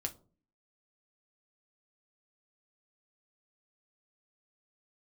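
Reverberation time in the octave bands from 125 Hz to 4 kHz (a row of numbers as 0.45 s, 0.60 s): 0.60 s, 0.65 s, 0.45 s, 0.35 s, 0.20 s, 0.20 s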